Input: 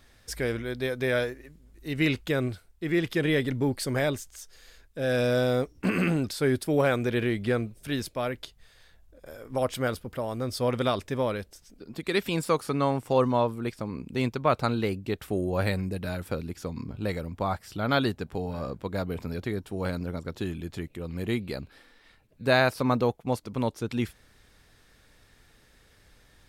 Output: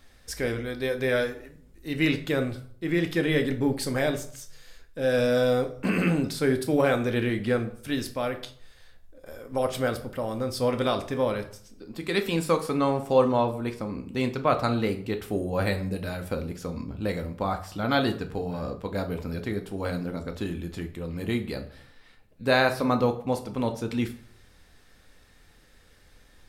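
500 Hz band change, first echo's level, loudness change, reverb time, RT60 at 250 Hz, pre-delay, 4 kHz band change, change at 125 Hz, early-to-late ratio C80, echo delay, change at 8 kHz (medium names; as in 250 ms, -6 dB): +1.5 dB, no echo, +1.5 dB, 0.55 s, 0.60 s, 4 ms, +1.0 dB, -0.5 dB, 16.5 dB, no echo, +1.0 dB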